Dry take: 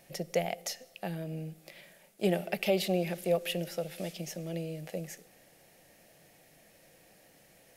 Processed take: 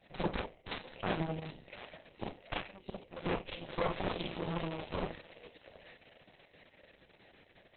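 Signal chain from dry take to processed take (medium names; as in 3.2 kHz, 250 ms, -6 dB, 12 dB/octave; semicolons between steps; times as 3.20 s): inverted gate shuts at -22 dBFS, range -27 dB; 2.23–2.64 s: high-pass 400 Hz -> 150 Hz 12 dB/octave; on a send: thinning echo 725 ms, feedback 39%, high-pass 1.1 kHz, level -6 dB; on the sum: Schroeder reverb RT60 0.37 s, combs from 29 ms, DRR -5 dB; Chebyshev shaper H 2 -45 dB, 4 -35 dB, 6 -7 dB, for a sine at -17.5 dBFS; 1.04–1.67 s: treble shelf 11 kHz +11 dB; trim -5 dB; Opus 6 kbps 48 kHz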